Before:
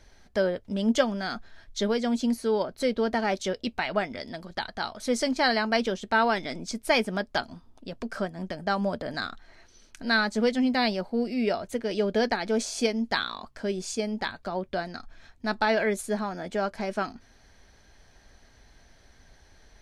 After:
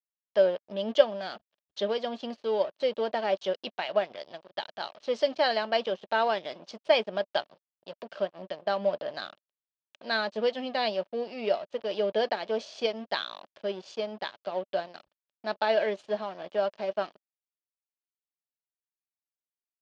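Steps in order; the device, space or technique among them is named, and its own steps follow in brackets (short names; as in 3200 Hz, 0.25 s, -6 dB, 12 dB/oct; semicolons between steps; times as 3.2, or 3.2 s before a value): blown loudspeaker (crossover distortion -40.5 dBFS; speaker cabinet 230–4700 Hz, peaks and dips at 250 Hz -9 dB, 590 Hz +9 dB, 1400 Hz -4 dB, 2100 Hz -5 dB, 3000 Hz +6 dB); gain -2.5 dB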